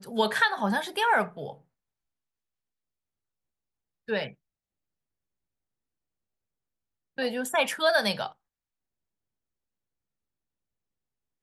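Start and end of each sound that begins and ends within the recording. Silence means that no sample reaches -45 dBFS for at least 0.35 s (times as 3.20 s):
4.08–4.33 s
7.18–8.32 s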